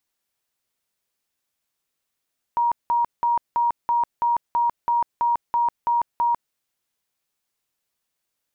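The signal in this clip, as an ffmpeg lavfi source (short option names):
-f lavfi -i "aevalsrc='0.141*sin(2*PI*947*mod(t,0.33))*lt(mod(t,0.33),139/947)':d=3.96:s=44100"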